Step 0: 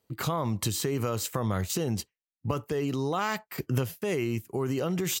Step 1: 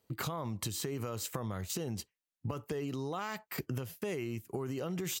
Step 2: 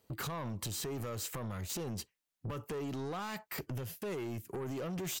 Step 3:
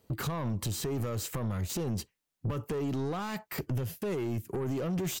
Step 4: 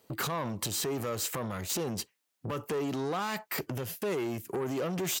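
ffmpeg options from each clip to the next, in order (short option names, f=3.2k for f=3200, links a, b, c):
-af "acompressor=threshold=-34dB:ratio=6"
-af "asoftclip=type=tanh:threshold=-38.5dB,volume=3.5dB"
-af "lowshelf=f=460:g=6.5,volume=2dB"
-af "highpass=f=440:p=1,volume=5dB"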